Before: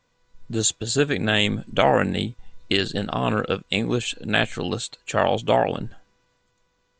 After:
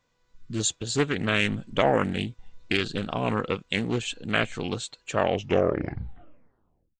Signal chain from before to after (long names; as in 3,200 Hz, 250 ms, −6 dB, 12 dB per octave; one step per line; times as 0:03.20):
turntable brake at the end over 1.78 s
gain on a spectral selection 0:00.37–0:00.60, 430–1,000 Hz −21 dB
highs frequency-modulated by the lows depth 0.24 ms
level −4 dB